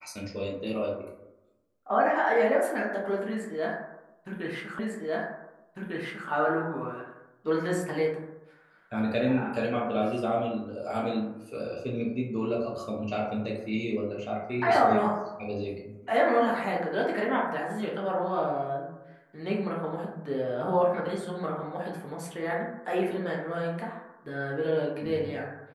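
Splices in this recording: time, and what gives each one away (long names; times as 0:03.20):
0:04.79: the same again, the last 1.5 s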